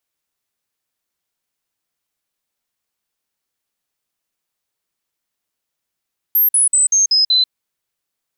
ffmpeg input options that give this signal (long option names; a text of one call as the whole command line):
ffmpeg -f lavfi -i "aevalsrc='0.316*clip(min(mod(t,0.19),0.14-mod(t,0.19))/0.005,0,1)*sin(2*PI*12800*pow(2,-floor(t/0.19)/3)*mod(t,0.19))':duration=1.14:sample_rate=44100" out.wav